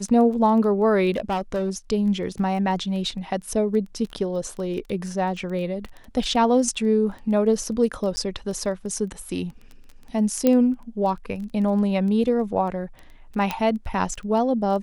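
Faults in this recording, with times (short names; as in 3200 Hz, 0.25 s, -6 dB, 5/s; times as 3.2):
crackle 12/s -31 dBFS
1.11–1.7 clipped -20 dBFS
8.16–8.17 gap 10 ms
10.47 pop -7 dBFS
13.51 pop -10 dBFS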